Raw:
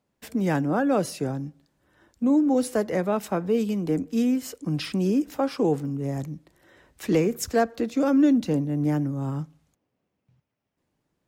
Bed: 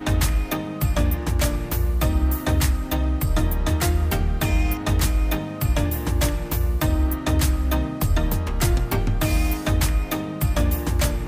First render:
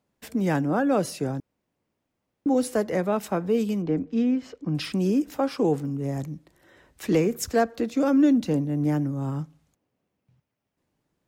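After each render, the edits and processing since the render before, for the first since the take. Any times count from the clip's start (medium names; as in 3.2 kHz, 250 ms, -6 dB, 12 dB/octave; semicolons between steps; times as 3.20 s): 1.40–2.46 s: room tone; 3.82–4.75 s: distance through air 200 m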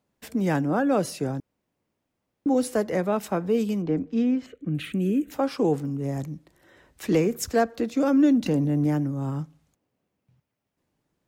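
4.46–5.31 s: static phaser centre 2.2 kHz, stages 4; 8.46–8.87 s: level flattener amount 70%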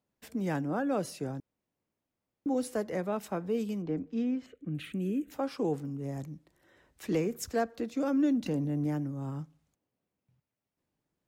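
trim -8 dB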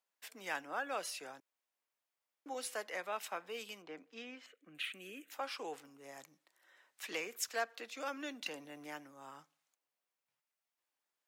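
dynamic bell 2.8 kHz, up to +6 dB, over -57 dBFS, Q 1.2; high-pass 970 Hz 12 dB/octave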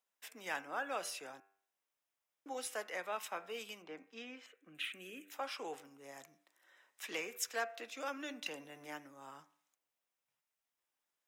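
band-stop 4.4 kHz, Q 10; de-hum 98.06 Hz, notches 28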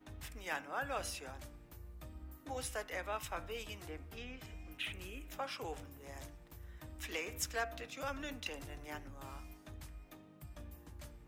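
add bed -30.5 dB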